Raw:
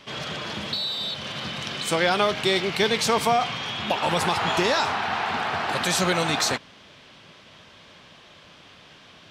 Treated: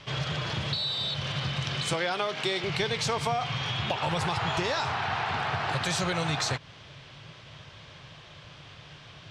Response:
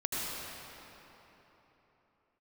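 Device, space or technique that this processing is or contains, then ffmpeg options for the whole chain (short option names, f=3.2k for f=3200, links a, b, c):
jukebox: -filter_complex "[0:a]asettb=1/sr,asplit=3[a][b][c];[a]atrim=end=1.934[d];[b]atrim=start=1.93:end=2.64,asetpts=PTS-STARTPTS,afade=t=in:d=0.004:c=qsin,afade=t=out:st=0.706:d=0.004:c=qsin,highpass=f=190:w=0.5412,highpass=f=190:w=1.3066[e];[c]atrim=start=2.636[f];[d][e]acrossfade=d=0.004:c1=hsin:c2=qsin[g];[g][f]acrossfade=d=0.004:c1=qsin:c2=hsin,lowpass=7.9k,lowshelf=f=170:t=q:w=3:g=6.5,acompressor=threshold=-27dB:ratio=3"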